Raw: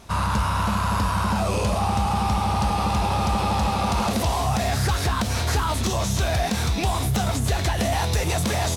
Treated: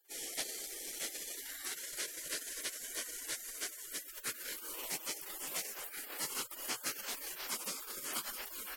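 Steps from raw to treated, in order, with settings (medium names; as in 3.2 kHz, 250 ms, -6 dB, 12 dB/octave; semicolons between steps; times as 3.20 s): amplifier tone stack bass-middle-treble 5-5-5; spectral gate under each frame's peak -30 dB weak; treble shelf 7.2 kHz -5 dB; trim +14 dB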